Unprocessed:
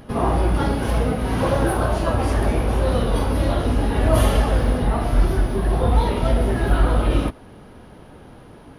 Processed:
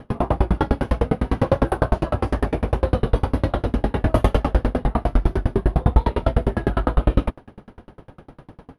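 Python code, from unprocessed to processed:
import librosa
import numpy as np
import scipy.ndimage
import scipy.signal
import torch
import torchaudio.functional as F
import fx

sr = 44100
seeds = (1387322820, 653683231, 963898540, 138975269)

p1 = fx.lowpass(x, sr, hz=2200.0, slope=6)
p2 = np.clip(p1, -10.0 ** (-13.5 / 20.0), 10.0 ** (-13.5 / 20.0))
p3 = p1 + (p2 * 10.0 ** (-4.5 / 20.0))
p4 = fx.tremolo_decay(p3, sr, direction='decaying', hz=9.9, depth_db=35)
y = p4 * 10.0 ** (4.0 / 20.0)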